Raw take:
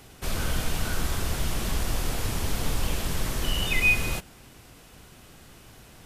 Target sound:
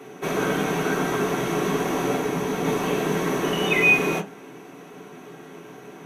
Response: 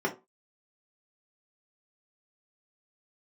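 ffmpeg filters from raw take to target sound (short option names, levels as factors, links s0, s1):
-filter_complex "[0:a]asettb=1/sr,asplit=3[s0][s1][s2];[s0]atrim=end=2.154[s3];[s1]atrim=start=2.15:end=2.65,asetpts=PTS-STARTPTS,afade=t=in:d=0.004:c=qsin,afade=t=out:st=0.496:d=0.004:c=qsin,acrossover=split=190[s4][s5];[s5]acompressor=threshold=0.0224:ratio=6[s6];[s4][s6]amix=inputs=2:normalize=0[s7];[s2]atrim=start=2.646[s8];[s3][s7]acrossfade=d=0.004:c1=hsin:c2=qsin[s9];[s9][s8]acrossfade=d=0.004:c1=qsin:c2=hsin[s10];[1:a]atrim=start_sample=2205,asetrate=48510,aresample=44100[s11];[s10][s11]afir=irnorm=-1:irlink=0"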